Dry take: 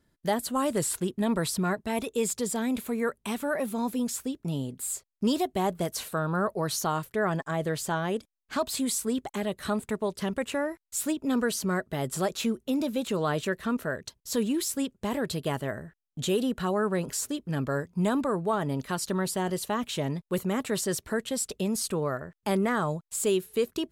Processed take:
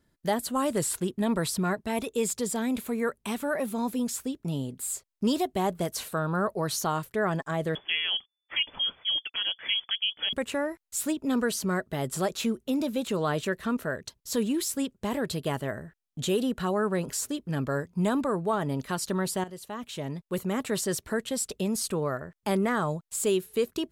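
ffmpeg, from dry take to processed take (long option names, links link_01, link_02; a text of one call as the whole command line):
ffmpeg -i in.wav -filter_complex "[0:a]asettb=1/sr,asplit=3[link_01][link_02][link_03];[link_01]atrim=end=7.754[link_04];[link_02]atrim=start=7.75:end=10.33,asetpts=PTS-STARTPTS,afade=type=in:duration=0.004:curve=qsin,afade=type=out:start_time=2.576:duration=0.004:curve=qsin,lowpass=frequency=3000:width_type=q:width=0.5098,lowpass=frequency=3000:width_type=q:width=0.6013,lowpass=frequency=3000:width_type=q:width=0.9,lowpass=frequency=3000:width_type=q:width=2.563,afreqshift=-3500[link_05];[link_03]atrim=start=10.326[link_06];[link_04][link_05]acrossfade=duration=0.004:curve1=hsin:curve2=qsin[link_07];[link_07][link_06]acrossfade=duration=0.004:curve1=qsin:curve2=hsin,asplit=2[link_08][link_09];[link_08]atrim=end=19.44,asetpts=PTS-STARTPTS,afade=type=out:start_time=19.436:duration=0.004:curve=hsin:silence=0.199526[link_10];[link_09]atrim=start=19.44,asetpts=PTS-STARTPTS,afade=type=in:duration=1.22:silence=0.199526[link_11];[link_10][link_11]concat=n=2:v=0:a=1" out.wav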